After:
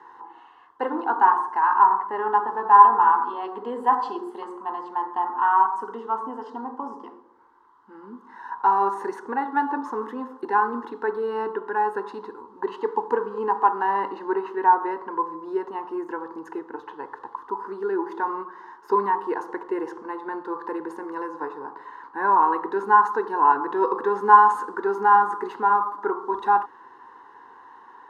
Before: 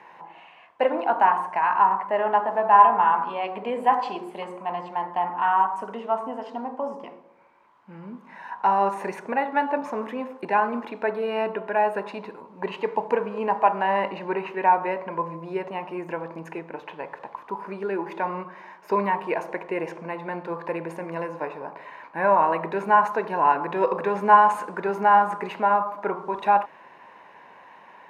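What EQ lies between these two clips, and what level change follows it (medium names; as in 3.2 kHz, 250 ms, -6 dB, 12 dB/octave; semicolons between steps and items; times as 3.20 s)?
low-pass 3.9 kHz 6 dB/octave; peaking EQ 560 Hz -10.5 dB 0.3 oct; static phaser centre 640 Hz, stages 6; +4.0 dB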